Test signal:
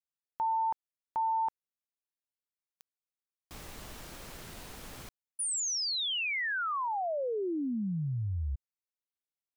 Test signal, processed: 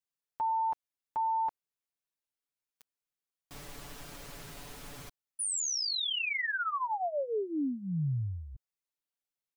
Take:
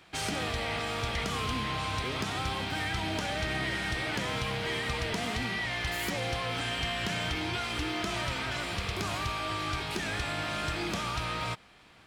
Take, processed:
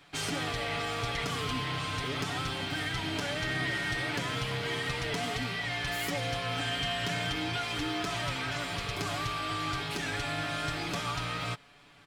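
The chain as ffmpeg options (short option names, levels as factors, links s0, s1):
-af "aecho=1:1:7:0.7,volume=0.794"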